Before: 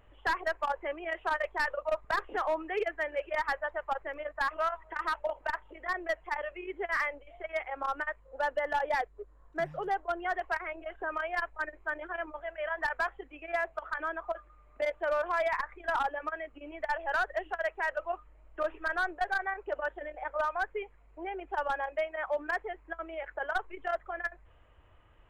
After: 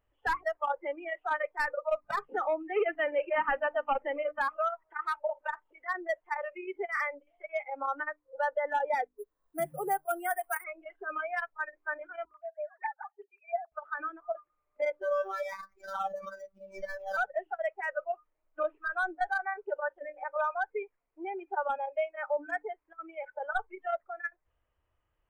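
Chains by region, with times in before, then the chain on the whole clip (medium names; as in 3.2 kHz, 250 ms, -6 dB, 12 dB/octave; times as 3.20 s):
2.76–4.41 s: waveshaping leveller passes 2 + brick-wall FIR low-pass 3.2 kHz
9.17–10.64 s: treble shelf 4.6 kHz +7.5 dB + careless resampling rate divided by 4×, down none, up hold
12.25–13.72 s: formants replaced by sine waves + rippled Chebyshev high-pass 280 Hz, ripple 9 dB + peaking EQ 790 Hz +9.5 dB 0.31 oct
15.01–17.17 s: median filter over 15 samples + robot voice 193 Hz + swell ahead of each attack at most 100 dB/s
whole clip: dynamic bell 3.9 kHz, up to -7 dB, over -52 dBFS, Q 0.9; spectral noise reduction 19 dB; hum notches 50/100/150/200/250/300 Hz; trim +1.5 dB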